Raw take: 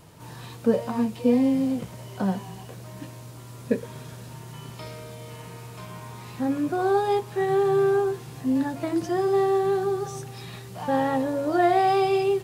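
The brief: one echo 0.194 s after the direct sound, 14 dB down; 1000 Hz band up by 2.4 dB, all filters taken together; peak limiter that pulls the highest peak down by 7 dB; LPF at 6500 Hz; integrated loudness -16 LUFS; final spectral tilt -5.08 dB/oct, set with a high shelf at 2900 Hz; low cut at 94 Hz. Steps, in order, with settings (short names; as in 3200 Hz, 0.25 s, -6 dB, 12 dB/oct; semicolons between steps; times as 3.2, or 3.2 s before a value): HPF 94 Hz; LPF 6500 Hz; bell 1000 Hz +3 dB; high shelf 2900 Hz +5.5 dB; limiter -16 dBFS; echo 0.194 s -14 dB; gain +9.5 dB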